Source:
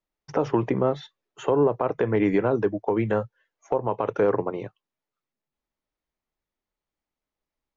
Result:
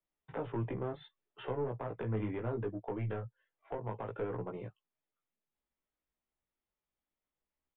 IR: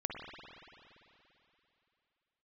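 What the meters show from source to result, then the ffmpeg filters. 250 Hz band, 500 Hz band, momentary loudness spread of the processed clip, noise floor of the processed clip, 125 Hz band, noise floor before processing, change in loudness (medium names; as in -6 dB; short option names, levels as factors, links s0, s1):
-15.0 dB, -16.0 dB, 10 LU, under -85 dBFS, -7.5 dB, under -85 dBFS, -14.5 dB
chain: -filter_complex "[0:a]acrossover=split=160[s0][s1];[s1]acompressor=threshold=0.00631:ratio=1.5[s2];[s0][s2]amix=inputs=2:normalize=0,aeval=exprs='0.141*(cos(1*acos(clip(val(0)/0.141,-1,1)))-cos(1*PI/2))+0.0316*(cos(2*acos(clip(val(0)/0.141,-1,1)))-cos(2*PI/2))':c=same,aresample=16000,asoftclip=type=tanh:threshold=0.075,aresample=44100,flanger=delay=16:depth=2.3:speed=0.66,aresample=8000,aresample=44100,volume=0.75"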